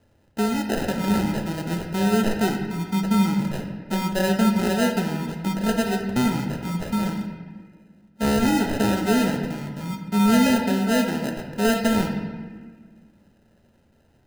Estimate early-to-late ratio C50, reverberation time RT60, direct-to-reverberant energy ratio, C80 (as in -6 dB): 5.5 dB, 1.6 s, 2.5 dB, 7.0 dB